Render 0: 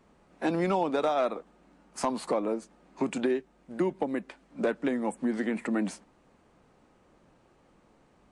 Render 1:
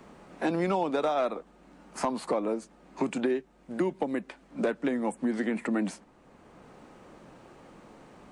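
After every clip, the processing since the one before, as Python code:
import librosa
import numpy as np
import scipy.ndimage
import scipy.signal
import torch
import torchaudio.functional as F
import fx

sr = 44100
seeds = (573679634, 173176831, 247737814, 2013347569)

y = fx.band_squash(x, sr, depth_pct=40)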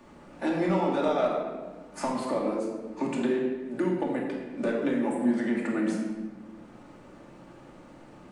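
y = fx.room_shoebox(x, sr, seeds[0], volume_m3=1200.0, walls='mixed', distance_m=2.5)
y = y * librosa.db_to_amplitude(-4.0)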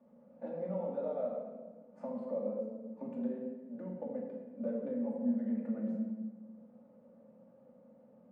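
y = fx.double_bandpass(x, sr, hz=340.0, octaves=1.2)
y = y * librosa.db_to_amplitude(-2.5)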